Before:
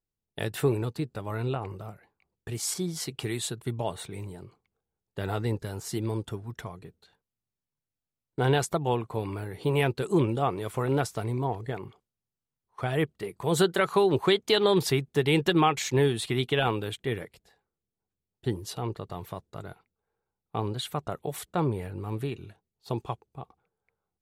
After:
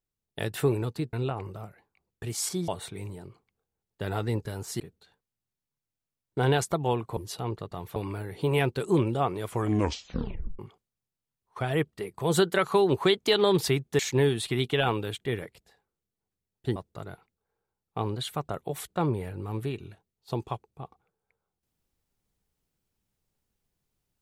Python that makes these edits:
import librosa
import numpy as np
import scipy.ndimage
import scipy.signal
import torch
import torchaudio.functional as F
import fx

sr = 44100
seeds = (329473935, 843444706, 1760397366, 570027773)

y = fx.edit(x, sr, fx.cut(start_s=1.13, length_s=0.25),
    fx.cut(start_s=2.93, length_s=0.92),
    fx.cut(start_s=5.97, length_s=0.84),
    fx.tape_stop(start_s=10.71, length_s=1.1),
    fx.cut(start_s=15.21, length_s=0.57),
    fx.move(start_s=18.55, length_s=0.79, to_s=9.18), tone=tone)